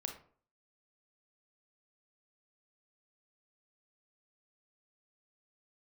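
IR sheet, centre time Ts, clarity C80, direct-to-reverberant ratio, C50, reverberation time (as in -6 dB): 17 ms, 13.5 dB, 4.0 dB, 8.0 dB, 0.50 s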